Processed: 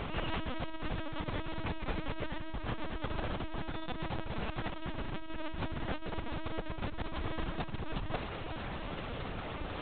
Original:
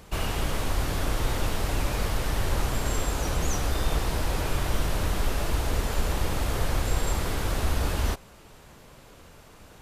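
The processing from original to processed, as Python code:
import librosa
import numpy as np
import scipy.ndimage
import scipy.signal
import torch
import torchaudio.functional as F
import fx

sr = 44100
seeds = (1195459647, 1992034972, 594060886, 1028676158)

p1 = fx.over_compress(x, sr, threshold_db=-36.0, ratio=-1.0)
p2 = p1 + fx.echo_single(p1, sr, ms=654, db=-15.5, dry=0)
y = fx.lpc_vocoder(p2, sr, seeds[0], excitation='pitch_kept', order=10)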